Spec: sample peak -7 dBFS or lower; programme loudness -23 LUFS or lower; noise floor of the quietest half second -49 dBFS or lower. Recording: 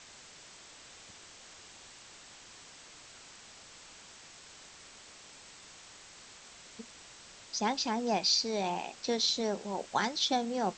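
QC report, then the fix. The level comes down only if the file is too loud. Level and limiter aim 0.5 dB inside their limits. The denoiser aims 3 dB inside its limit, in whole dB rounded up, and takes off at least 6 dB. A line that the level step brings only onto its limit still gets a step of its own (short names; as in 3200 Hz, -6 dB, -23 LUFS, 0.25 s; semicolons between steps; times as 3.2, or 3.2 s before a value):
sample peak -15.5 dBFS: OK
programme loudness -31.0 LUFS: OK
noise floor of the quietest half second -53 dBFS: OK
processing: none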